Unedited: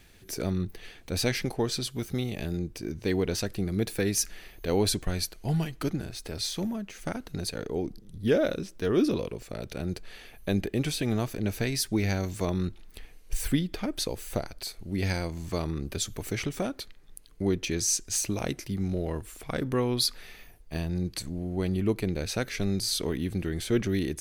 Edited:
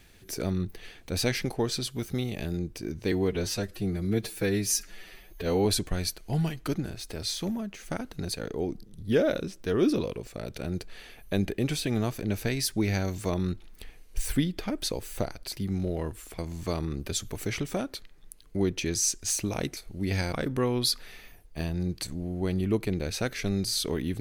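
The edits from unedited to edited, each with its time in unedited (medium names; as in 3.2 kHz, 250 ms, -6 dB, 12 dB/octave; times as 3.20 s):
3.12–4.81 s: stretch 1.5×
14.68–15.24 s: swap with 18.62–19.48 s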